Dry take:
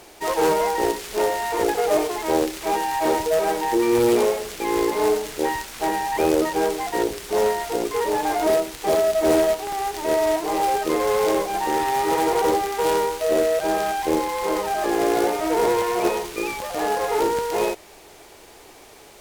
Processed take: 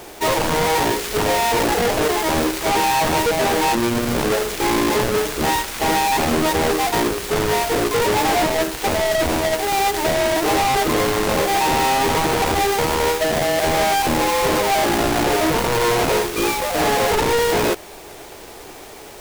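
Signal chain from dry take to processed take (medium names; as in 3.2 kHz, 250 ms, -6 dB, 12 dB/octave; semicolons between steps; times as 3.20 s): square wave that keeps the level; treble shelf 6.4 kHz +4 dB; wavefolder -17.5 dBFS; trim +3 dB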